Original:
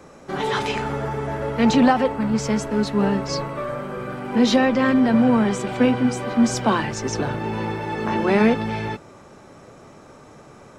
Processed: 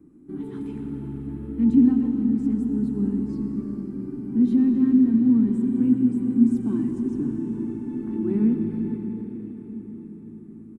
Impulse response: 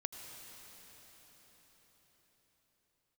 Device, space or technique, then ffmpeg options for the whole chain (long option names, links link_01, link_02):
cathedral: -filter_complex "[1:a]atrim=start_sample=2205[link_01];[0:a][link_01]afir=irnorm=-1:irlink=0,asettb=1/sr,asplit=3[link_02][link_03][link_04];[link_02]atrim=end=2.544[link_05];[link_03]atrim=start=2.54:end=3.11,asetpts=PTS-STARTPTS,afade=type=in:duration=0.004:curve=qsin,afade=type=out:start_time=0.566:duration=0.004:curve=qsin,bandreject=frequency=2200:width=8[link_06];[link_04]atrim=start=3.106[link_07];[link_05][link_06]acrossfade=duration=0.004:curve1=hsin:curve2=qsin[link_08];[link_08][link_07]acrossfade=duration=0.004:curve1=qsin:curve2=hsin,firequalizer=gain_entry='entry(140,0);entry(300,12);entry(540,-27);entry(890,-20);entry(5900,-29);entry(8900,-10)':delay=0.05:min_phase=1,volume=-5.5dB"